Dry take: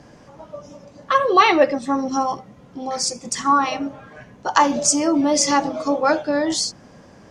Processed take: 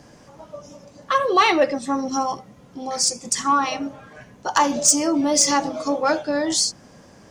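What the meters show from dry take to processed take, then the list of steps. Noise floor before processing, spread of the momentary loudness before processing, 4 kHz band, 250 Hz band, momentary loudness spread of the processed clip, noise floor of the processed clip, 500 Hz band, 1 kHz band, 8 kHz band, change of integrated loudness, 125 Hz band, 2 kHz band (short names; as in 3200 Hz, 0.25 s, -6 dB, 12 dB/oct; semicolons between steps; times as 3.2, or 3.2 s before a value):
-48 dBFS, 16 LU, +1.0 dB, -2.0 dB, 14 LU, -49 dBFS, -2.5 dB, -2.5 dB, +3.0 dB, -1.0 dB, -2.0 dB, -2.0 dB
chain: high shelf 5900 Hz +10.5 dB; soft clip -4 dBFS, distortion -21 dB; gain -2 dB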